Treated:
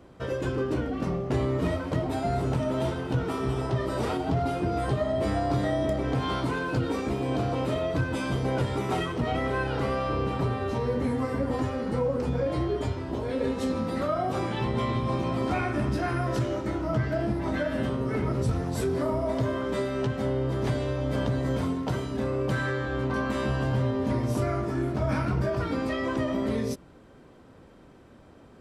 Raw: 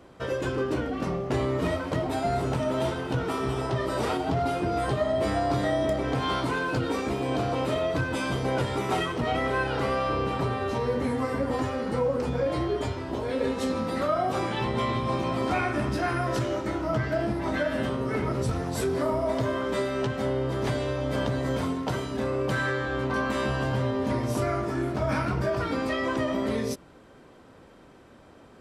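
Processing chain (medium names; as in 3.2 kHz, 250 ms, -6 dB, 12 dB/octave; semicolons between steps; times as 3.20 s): bass shelf 340 Hz +6.5 dB; trim -3.5 dB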